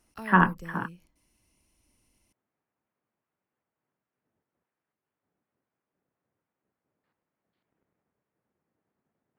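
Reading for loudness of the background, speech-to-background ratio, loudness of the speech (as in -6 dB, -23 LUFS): -43.5 LUFS, 18.5 dB, -25.0 LUFS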